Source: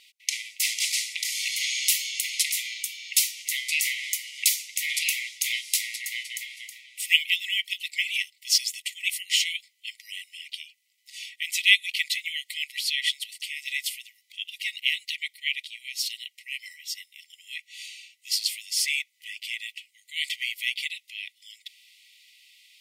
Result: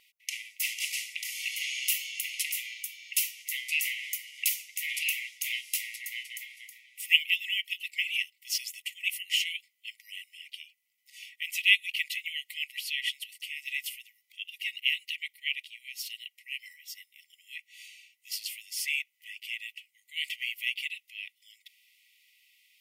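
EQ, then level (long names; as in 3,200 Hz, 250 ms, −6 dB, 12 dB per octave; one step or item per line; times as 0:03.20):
dynamic equaliser 2,800 Hz, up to +8 dB, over −43 dBFS, Q 4.8
octave-band graphic EQ 2,000/4,000/8,000 Hz −3/−11/−8 dB
0.0 dB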